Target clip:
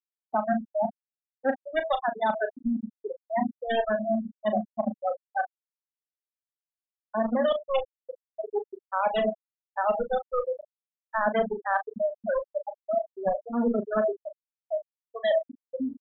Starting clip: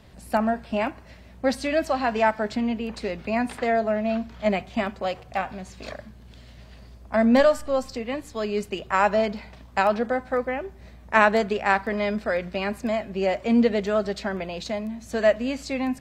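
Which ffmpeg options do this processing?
-filter_complex "[0:a]acrossover=split=220|2300[a][b][c];[a]adelay=90[d];[c]adelay=420[e];[d][b][e]amix=inputs=3:normalize=0,acrusher=bits=4:dc=4:mix=0:aa=0.000001,equalizer=f=220:w=3.4:g=5,bandreject=f=162.8:t=h:w=4,bandreject=f=325.6:t=h:w=4,bandreject=f=488.4:t=h:w=4,bandreject=f=651.2:t=h:w=4,bandreject=f=814:t=h:w=4,bandreject=f=976.8:t=h:w=4,bandreject=f=1.1396k:t=h:w=4,asplit=2[f][g];[g]aecho=0:1:90:0.0944[h];[f][h]amix=inputs=2:normalize=0,aeval=exprs='sgn(val(0))*max(abs(val(0))-0.00299,0)':c=same,asplit=2[i][j];[j]highpass=f=720:p=1,volume=13dB,asoftclip=type=tanh:threshold=-4.5dB[k];[i][k]amix=inputs=2:normalize=0,lowpass=f=1.4k:p=1,volume=-6dB,lowpass=f=3.7k:t=q:w=4.1,afftfilt=real='re*gte(hypot(re,im),0.316)':imag='im*gte(hypot(re,im),0.316)':win_size=1024:overlap=0.75,areverse,acompressor=threshold=-31dB:ratio=5,areverse,asplit=2[l][m];[m]adelay=37,volume=-10dB[n];[l][n]amix=inputs=2:normalize=0,volume=7dB"

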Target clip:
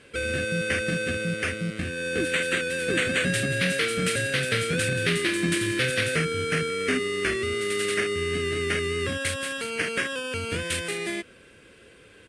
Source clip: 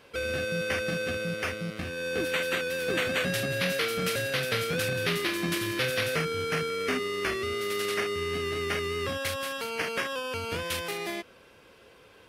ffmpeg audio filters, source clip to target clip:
-af "firequalizer=gain_entry='entry(320,0);entry(890,-13);entry(1600,0);entry(5500,-6);entry(8700,6);entry(14000,-24)':delay=0.05:min_phase=1,volume=5.5dB"

